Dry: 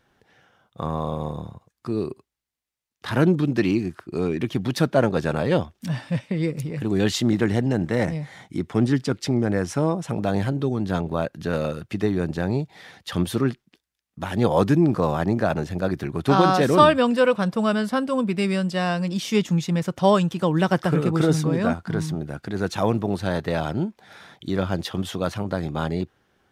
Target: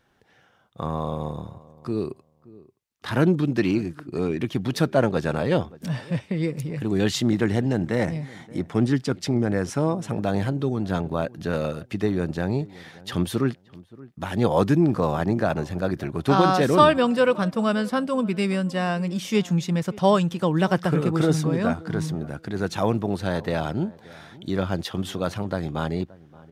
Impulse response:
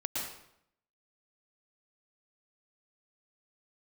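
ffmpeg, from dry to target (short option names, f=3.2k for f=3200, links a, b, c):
-filter_complex "[0:a]asettb=1/sr,asplit=3[a][b][c];[a]atrim=end=18.524[d];[b]atrim=start=18.52:end=19.3,asetpts=PTS-STARTPTS,afade=t=in:d=0.004:c=qsin,afade=t=out:st=0.776:d=0.004:c=qsin,equalizer=f=4.3k:w=1.5:g=-5[e];[c]atrim=start=19.296[f];[d][e]acrossfade=d=0.004:c1=hsin:c2=qsin[g];[g][f]acrossfade=d=0.004:c1=qsin:c2=hsin,asplit=2[h][i];[i]adelay=575,lowpass=f=1.2k:p=1,volume=-20.5dB,asplit=2[j][k];[k]adelay=575,lowpass=f=1.2k:p=1,volume=0.21[l];[h][j][l]amix=inputs=3:normalize=0,volume=-1dB"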